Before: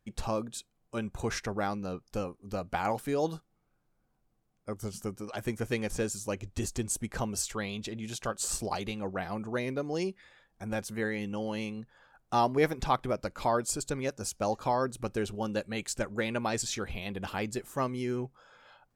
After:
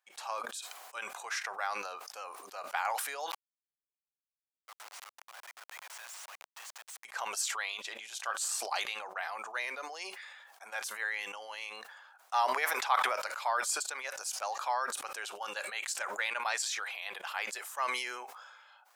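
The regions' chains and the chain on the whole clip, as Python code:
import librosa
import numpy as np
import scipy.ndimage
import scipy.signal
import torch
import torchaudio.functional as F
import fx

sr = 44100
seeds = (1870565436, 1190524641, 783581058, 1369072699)

y = fx.chain(x, sr, fx.highpass(hz=890.0, slope=24),
    fx.schmitt(flips_db=-44.0), at=(3.31, 7.05))
y = scipy.signal.sosfilt(scipy.signal.butter(4, 770.0, 'highpass', fs=sr, output='sos'), y)
y = fx.dynamic_eq(y, sr, hz=1700.0, q=1.0, threshold_db=-45.0, ratio=4.0, max_db=4)
y = fx.sustainer(y, sr, db_per_s=35.0)
y = F.gain(torch.from_numpy(y), -2.0).numpy()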